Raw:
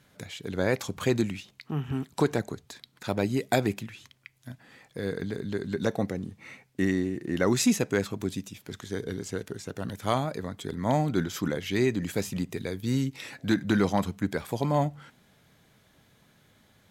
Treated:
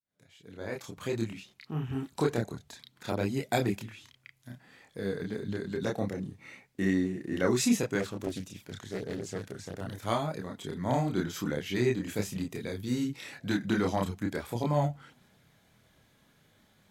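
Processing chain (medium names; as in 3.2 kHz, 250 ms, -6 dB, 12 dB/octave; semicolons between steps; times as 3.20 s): fade-in on the opening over 1.81 s; chorus voices 2, 0.82 Hz, delay 29 ms, depth 3.9 ms; 8.00–9.80 s: loudspeaker Doppler distortion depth 0.58 ms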